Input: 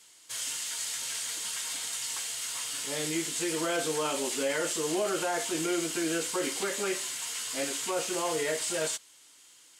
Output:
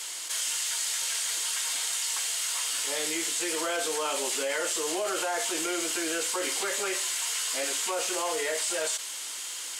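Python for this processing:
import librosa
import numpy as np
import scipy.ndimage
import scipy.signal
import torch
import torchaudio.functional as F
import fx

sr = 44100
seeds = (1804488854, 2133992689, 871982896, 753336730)

y = scipy.signal.sosfilt(scipy.signal.butter(2, 470.0, 'highpass', fs=sr, output='sos'), x)
y = fx.env_flatten(y, sr, amount_pct=70)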